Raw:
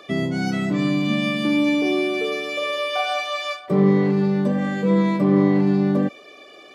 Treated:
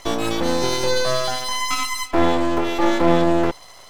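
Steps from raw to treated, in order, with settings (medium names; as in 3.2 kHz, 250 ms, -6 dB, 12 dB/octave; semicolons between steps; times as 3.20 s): speed mistake 45 rpm record played at 78 rpm; half-wave rectifier; trim +4.5 dB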